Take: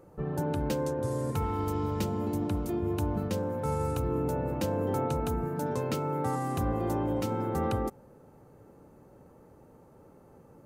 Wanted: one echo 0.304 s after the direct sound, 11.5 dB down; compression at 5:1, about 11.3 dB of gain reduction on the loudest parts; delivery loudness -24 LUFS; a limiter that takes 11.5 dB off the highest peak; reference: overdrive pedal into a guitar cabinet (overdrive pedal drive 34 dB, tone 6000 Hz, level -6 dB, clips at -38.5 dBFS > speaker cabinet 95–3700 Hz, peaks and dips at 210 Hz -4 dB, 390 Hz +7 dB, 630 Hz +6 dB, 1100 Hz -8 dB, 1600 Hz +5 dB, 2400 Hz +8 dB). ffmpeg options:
-filter_complex "[0:a]acompressor=threshold=-39dB:ratio=5,alimiter=level_in=17dB:limit=-24dB:level=0:latency=1,volume=-17dB,aecho=1:1:304:0.266,asplit=2[a][b];[b]highpass=f=720:p=1,volume=34dB,asoftclip=type=tanh:threshold=-38.5dB[c];[a][c]amix=inputs=2:normalize=0,lowpass=f=6k:p=1,volume=-6dB,highpass=95,equalizer=f=210:t=q:w=4:g=-4,equalizer=f=390:t=q:w=4:g=7,equalizer=f=630:t=q:w=4:g=6,equalizer=f=1.1k:t=q:w=4:g=-8,equalizer=f=1.6k:t=q:w=4:g=5,equalizer=f=2.4k:t=q:w=4:g=8,lowpass=f=3.7k:w=0.5412,lowpass=f=3.7k:w=1.3066,volume=18dB"

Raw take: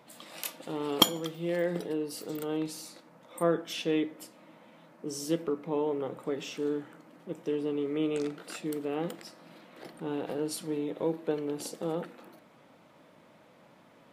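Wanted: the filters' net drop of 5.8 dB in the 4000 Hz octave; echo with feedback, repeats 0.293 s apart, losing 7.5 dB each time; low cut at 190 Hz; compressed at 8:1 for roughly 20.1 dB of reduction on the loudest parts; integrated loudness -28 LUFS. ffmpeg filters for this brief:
-af "highpass=190,equalizer=f=4k:t=o:g=-8,acompressor=threshold=-42dB:ratio=8,aecho=1:1:293|586|879|1172|1465:0.422|0.177|0.0744|0.0312|0.0131,volume=18.5dB"

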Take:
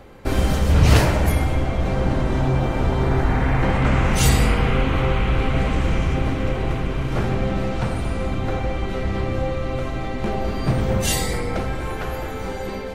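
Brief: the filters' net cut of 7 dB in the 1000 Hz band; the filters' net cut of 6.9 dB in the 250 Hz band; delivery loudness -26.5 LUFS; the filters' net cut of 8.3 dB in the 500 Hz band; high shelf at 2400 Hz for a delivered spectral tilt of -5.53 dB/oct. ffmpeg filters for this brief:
-af "equalizer=f=250:t=o:g=-8.5,equalizer=f=500:t=o:g=-6,equalizer=f=1k:t=o:g=-6,highshelf=f=2.4k:g=-4,volume=-2dB"

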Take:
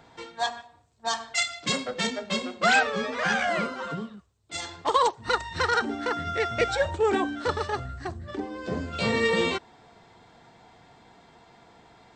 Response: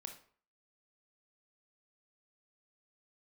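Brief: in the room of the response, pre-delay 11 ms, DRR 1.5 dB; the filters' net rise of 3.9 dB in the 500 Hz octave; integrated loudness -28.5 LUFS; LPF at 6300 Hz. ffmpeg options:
-filter_complex "[0:a]lowpass=6.3k,equalizer=f=500:t=o:g=4.5,asplit=2[a][b];[1:a]atrim=start_sample=2205,adelay=11[c];[b][c]afir=irnorm=-1:irlink=0,volume=3dB[d];[a][d]amix=inputs=2:normalize=0,volume=-5.5dB"

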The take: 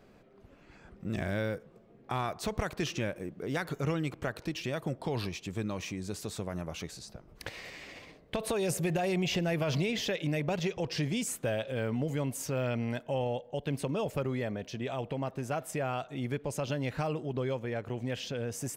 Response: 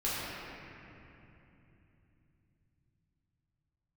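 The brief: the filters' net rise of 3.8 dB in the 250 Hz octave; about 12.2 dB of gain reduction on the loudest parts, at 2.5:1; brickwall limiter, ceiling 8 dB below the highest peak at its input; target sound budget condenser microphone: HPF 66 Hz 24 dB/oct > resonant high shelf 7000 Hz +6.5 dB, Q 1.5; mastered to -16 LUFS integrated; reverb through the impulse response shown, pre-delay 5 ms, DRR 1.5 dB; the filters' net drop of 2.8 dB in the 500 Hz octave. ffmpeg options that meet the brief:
-filter_complex "[0:a]equalizer=f=250:t=o:g=6.5,equalizer=f=500:t=o:g=-5.5,acompressor=threshold=-44dB:ratio=2.5,alimiter=level_in=10.5dB:limit=-24dB:level=0:latency=1,volume=-10.5dB,asplit=2[a][b];[1:a]atrim=start_sample=2205,adelay=5[c];[b][c]afir=irnorm=-1:irlink=0,volume=-10dB[d];[a][d]amix=inputs=2:normalize=0,highpass=f=66:w=0.5412,highpass=f=66:w=1.3066,highshelf=f=7k:t=q:w=1.5:g=6.5,volume=25.5dB"

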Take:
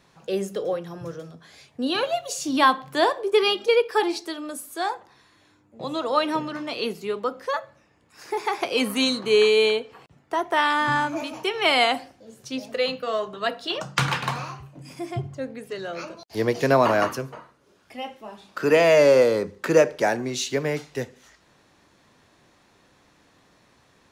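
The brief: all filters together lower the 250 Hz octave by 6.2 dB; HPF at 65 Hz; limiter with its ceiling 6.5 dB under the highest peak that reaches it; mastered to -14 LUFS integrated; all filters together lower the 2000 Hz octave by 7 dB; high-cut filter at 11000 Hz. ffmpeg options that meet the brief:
-af "highpass=65,lowpass=11k,equalizer=f=250:t=o:g=-8,equalizer=f=2k:t=o:g=-9,volume=13dB,alimiter=limit=-1dB:level=0:latency=1"

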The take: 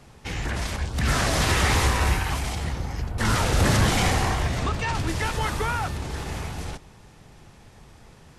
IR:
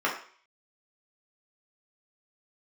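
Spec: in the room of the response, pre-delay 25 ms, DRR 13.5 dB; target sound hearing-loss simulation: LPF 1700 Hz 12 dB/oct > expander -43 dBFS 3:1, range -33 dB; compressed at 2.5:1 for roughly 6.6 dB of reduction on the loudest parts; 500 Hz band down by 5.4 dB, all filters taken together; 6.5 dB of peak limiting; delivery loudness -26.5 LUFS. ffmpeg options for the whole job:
-filter_complex "[0:a]equalizer=f=500:t=o:g=-7,acompressor=threshold=-27dB:ratio=2.5,alimiter=limit=-24dB:level=0:latency=1,asplit=2[a][b];[1:a]atrim=start_sample=2205,adelay=25[c];[b][c]afir=irnorm=-1:irlink=0,volume=-26dB[d];[a][d]amix=inputs=2:normalize=0,lowpass=1.7k,agate=range=-33dB:threshold=-43dB:ratio=3,volume=8.5dB"

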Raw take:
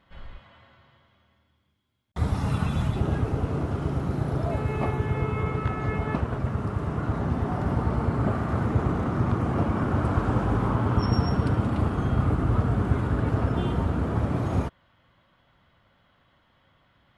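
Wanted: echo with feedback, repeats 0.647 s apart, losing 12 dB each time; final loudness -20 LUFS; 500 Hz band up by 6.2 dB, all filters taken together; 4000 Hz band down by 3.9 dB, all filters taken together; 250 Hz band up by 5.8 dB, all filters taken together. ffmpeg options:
-af "equalizer=f=250:t=o:g=6,equalizer=f=500:t=o:g=6,equalizer=f=4k:t=o:g=-6,aecho=1:1:647|1294|1941:0.251|0.0628|0.0157,volume=3dB"

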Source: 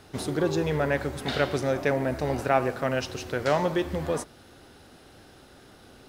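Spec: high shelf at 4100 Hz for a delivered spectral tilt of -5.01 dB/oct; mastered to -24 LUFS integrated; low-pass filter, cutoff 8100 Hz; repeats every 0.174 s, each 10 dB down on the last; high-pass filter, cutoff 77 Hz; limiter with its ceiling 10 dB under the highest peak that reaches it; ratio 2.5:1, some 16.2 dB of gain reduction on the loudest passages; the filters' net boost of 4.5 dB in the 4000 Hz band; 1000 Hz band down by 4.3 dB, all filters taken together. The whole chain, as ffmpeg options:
-af "highpass=77,lowpass=8.1k,equalizer=f=1k:t=o:g=-6.5,equalizer=f=4k:t=o:g=8,highshelf=f=4.1k:g=-3.5,acompressor=threshold=-47dB:ratio=2.5,alimiter=level_in=12dB:limit=-24dB:level=0:latency=1,volume=-12dB,aecho=1:1:174|348|522|696:0.316|0.101|0.0324|0.0104,volume=23dB"

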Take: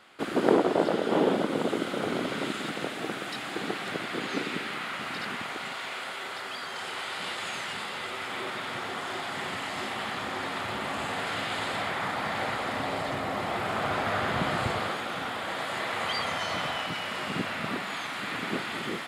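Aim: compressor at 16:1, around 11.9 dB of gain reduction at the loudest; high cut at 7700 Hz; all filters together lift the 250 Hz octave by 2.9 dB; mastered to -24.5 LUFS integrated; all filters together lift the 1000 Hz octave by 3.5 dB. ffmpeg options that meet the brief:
-af "lowpass=7.7k,equalizer=f=250:t=o:g=3.5,equalizer=f=1k:t=o:g=4.5,acompressor=threshold=-27dB:ratio=16,volume=7.5dB"

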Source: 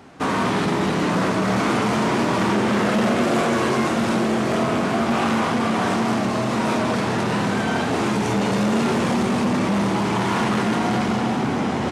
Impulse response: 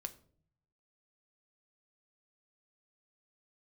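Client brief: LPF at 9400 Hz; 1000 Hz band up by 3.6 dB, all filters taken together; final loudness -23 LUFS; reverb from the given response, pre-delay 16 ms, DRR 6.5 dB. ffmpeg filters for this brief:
-filter_complex "[0:a]lowpass=9.4k,equalizer=f=1k:t=o:g=4.5,asplit=2[a][b];[1:a]atrim=start_sample=2205,adelay=16[c];[b][c]afir=irnorm=-1:irlink=0,volume=-3.5dB[d];[a][d]amix=inputs=2:normalize=0,volume=-4.5dB"

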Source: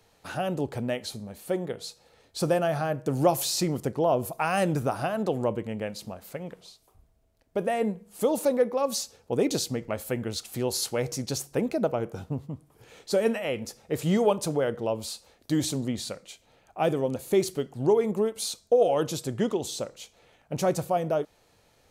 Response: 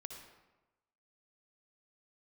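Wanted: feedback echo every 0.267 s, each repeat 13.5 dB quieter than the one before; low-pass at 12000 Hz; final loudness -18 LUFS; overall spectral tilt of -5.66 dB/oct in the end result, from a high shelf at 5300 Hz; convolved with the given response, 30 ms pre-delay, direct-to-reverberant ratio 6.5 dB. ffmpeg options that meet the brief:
-filter_complex "[0:a]lowpass=12k,highshelf=f=5.3k:g=-7,aecho=1:1:267|534:0.211|0.0444,asplit=2[a][b];[1:a]atrim=start_sample=2205,adelay=30[c];[b][c]afir=irnorm=-1:irlink=0,volume=-2.5dB[d];[a][d]amix=inputs=2:normalize=0,volume=9.5dB"

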